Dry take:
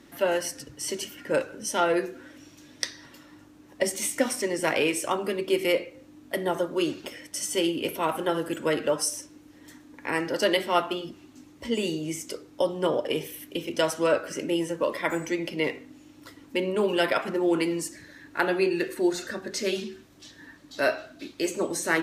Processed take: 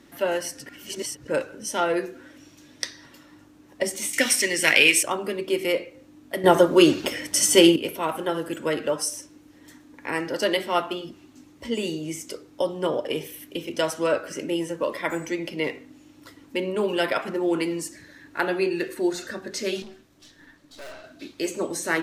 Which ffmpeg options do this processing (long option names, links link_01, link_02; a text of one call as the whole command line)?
ffmpeg -i in.wav -filter_complex "[0:a]asettb=1/sr,asplit=3[link_01][link_02][link_03];[link_01]atrim=end=4.134[link_04];[link_02]atrim=start=4.13:end=5.03,asetpts=PTS-STARTPTS,afade=type=in:duration=0.004:curve=qsin,afade=type=out:start_time=0.896:duration=0.004:curve=qsin,highshelf=frequency=1500:width_type=q:width=1.5:gain=10.5[link_05];[link_03]atrim=start=5.026[link_06];[link_04][link_05]acrossfade=duration=0.004:curve1=hsin:curve2=qsin[link_07];[link_07][link_06]acrossfade=duration=0.004:curve1=qsin:curve2=hsin,asettb=1/sr,asplit=3[link_08][link_09][link_10];[link_08]atrim=end=19.824[link_11];[link_09]atrim=start=19.82:end=21.04,asetpts=PTS-STARTPTS,afade=type=in:duration=0.004:curve=qsin,afade=type=out:start_time=1.216:duration=0.004:curve=qsin,aeval=exprs='(tanh(89.1*val(0)+0.7)-tanh(0.7))/89.1':channel_layout=same[link_12];[link_10]atrim=start=21.036[link_13];[link_11][link_12]acrossfade=duration=0.004:curve1=hsin:curve2=qsin[link_14];[link_14][link_13]acrossfade=duration=0.004:curve1=qsin:curve2=hsin,asplit=5[link_15][link_16][link_17][link_18][link_19];[link_15]atrim=end=0.662[link_20];[link_16]atrim=start=0.658:end=1.282,asetpts=PTS-STARTPTS,areverse[link_21];[link_17]atrim=start=1.278:end=6.442[link_22];[link_18]atrim=start=6.438:end=7.762,asetpts=PTS-STARTPTS,volume=11dB[link_23];[link_19]atrim=start=7.758[link_24];[link_20][link_21]acrossfade=duration=0.004:curve1=hsin:curve2=hsin[link_25];[link_25][link_22]acrossfade=duration=0.004:curve1=hsin:curve2=hsin[link_26];[link_26][link_23]acrossfade=duration=0.004:curve1=hsin:curve2=hsin[link_27];[link_27][link_24]acrossfade=duration=0.004:curve1=hsin:curve2=hsin" out.wav